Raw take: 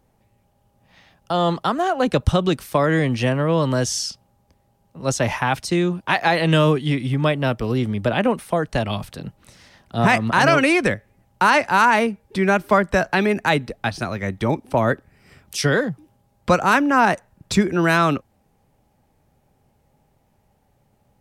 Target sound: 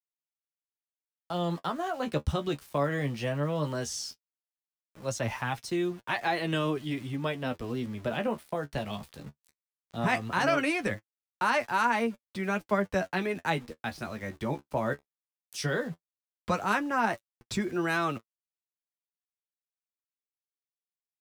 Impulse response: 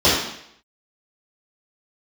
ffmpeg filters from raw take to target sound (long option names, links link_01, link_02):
-af "aeval=exprs='val(0)*gte(abs(val(0)),0.0158)':channel_layout=same,flanger=delay=8.4:depth=5.7:regen=33:speed=0.17:shape=sinusoidal,volume=-7.5dB"